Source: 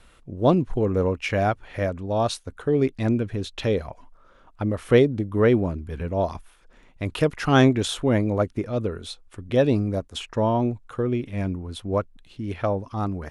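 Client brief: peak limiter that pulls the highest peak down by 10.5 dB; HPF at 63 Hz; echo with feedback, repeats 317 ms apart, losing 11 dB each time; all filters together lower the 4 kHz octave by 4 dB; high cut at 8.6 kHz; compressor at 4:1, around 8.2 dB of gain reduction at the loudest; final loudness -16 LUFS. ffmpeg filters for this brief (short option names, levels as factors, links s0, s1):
-af "highpass=63,lowpass=8600,equalizer=f=4000:t=o:g=-5,acompressor=threshold=0.0891:ratio=4,alimiter=limit=0.0794:level=0:latency=1,aecho=1:1:317|634|951:0.282|0.0789|0.0221,volume=6.68"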